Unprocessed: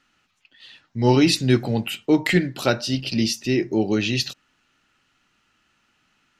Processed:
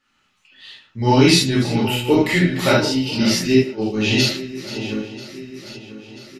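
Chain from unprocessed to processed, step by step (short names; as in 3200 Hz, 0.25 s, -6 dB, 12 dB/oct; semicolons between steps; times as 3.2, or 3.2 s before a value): regenerating reverse delay 0.494 s, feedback 64%, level -12 dB; 3.55–4 gate -17 dBFS, range -12 dB; tremolo saw up 1.4 Hz, depth 60%; speakerphone echo 0.11 s, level -13 dB; non-linear reverb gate 0.1 s flat, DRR -6.5 dB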